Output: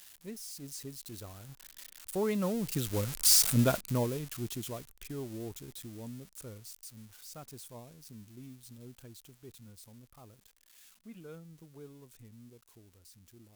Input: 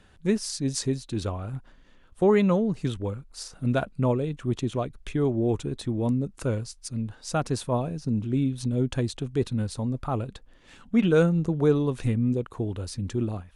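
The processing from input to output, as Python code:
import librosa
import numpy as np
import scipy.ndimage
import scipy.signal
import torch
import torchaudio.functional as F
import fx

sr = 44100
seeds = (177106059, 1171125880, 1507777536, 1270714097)

y = x + 0.5 * 10.0 ** (-20.5 / 20.0) * np.diff(np.sign(x), prepend=np.sign(x[:1]))
y = fx.doppler_pass(y, sr, speed_mps=10, closest_m=1.8, pass_at_s=3.33)
y = y * librosa.db_to_amplitude(4.5)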